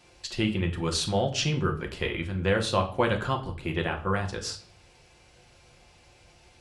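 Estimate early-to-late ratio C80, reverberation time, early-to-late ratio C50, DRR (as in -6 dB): 16.5 dB, 0.45 s, 12.5 dB, 2.0 dB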